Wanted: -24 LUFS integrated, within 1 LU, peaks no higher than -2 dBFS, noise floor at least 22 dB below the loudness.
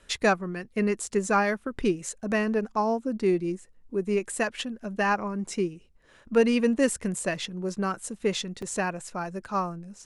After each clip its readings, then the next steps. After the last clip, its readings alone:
dropouts 1; longest dropout 4.5 ms; loudness -28.0 LUFS; peak -9.5 dBFS; loudness target -24.0 LUFS
-> interpolate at 8.62, 4.5 ms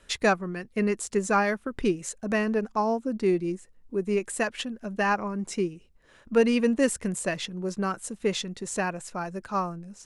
dropouts 0; loudness -28.0 LUFS; peak -9.5 dBFS; loudness target -24.0 LUFS
-> gain +4 dB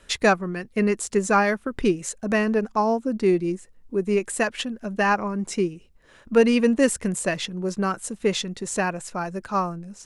loudness -24.0 LUFS; peak -5.5 dBFS; noise floor -54 dBFS

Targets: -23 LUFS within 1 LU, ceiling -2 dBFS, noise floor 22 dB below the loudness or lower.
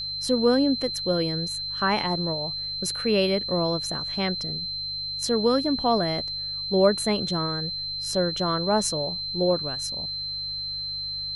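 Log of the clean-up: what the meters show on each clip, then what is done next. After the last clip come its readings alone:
hum 50 Hz; harmonics up to 150 Hz; hum level -46 dBFS; steady tone 4100 Hz; tone level -29 dBFS; loudness -25.0 LUFS; peak -8.0 dBFS; loudness target -23.0 LUFS
-> de-hum 50 Hz, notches 3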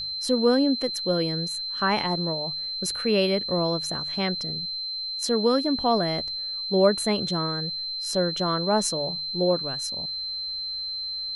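hum none; steady tone 4100 Hz; tone level -29 dBFS
-> notch 4100 Hz, Q 30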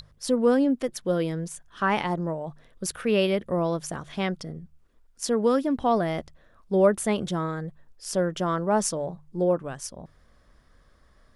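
steady tone none; loudness -26.0 LUFS; peak -8.5 dBFS; loudness target -23.0 LUFS
-> gain +3 dB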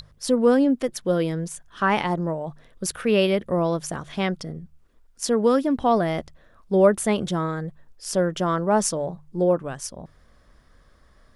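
loudness -23.0 LUFS; peak -5.5 dBFS; noise floor -57 dBFS

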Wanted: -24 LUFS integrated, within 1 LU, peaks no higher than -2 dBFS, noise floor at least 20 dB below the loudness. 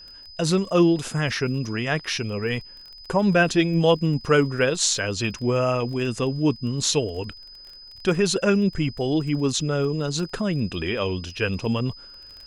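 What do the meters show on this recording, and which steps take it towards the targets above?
ticks 22/s; steady tone 5000 Hz; tone level -42 dBFS; loudness -23.0 LUFS; peak -4.5 dBFS; loudness target -24.0 LUFS
-> de-click; notch 5000 Hz, Q 30; gain -1 dB

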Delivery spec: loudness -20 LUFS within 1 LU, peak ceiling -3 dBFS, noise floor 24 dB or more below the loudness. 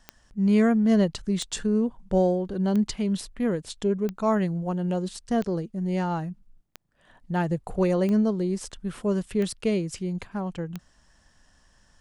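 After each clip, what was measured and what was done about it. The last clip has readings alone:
clicks 9; loudness -26.0 LUFS; peak -11.0 dBFS; loudness target -20.0 LUFS
-> de-click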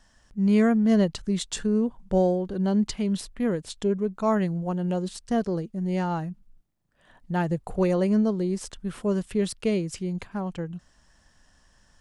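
clicks 0; loudness -26.0 LUFS; peak -11.0 dBFS; loudness target -20.0 LUFS
-> gain +6 dB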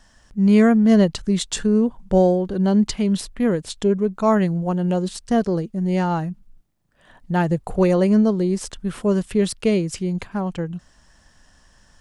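loudness -20.0 LUFS; peak -5.0 dBFS; noise floor -56 dBFS

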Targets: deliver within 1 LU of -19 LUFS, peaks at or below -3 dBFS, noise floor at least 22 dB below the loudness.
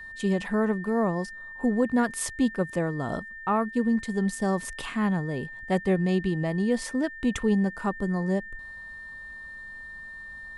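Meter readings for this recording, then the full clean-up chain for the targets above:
steady tone 1800 Hz; tone level -39 dBFS; loudness -27.0 LUFS; peak -12.0 dBFS; loudness target -19.0 LUFS
-> notch 1800 Hz, Q 30; gain +8 dB

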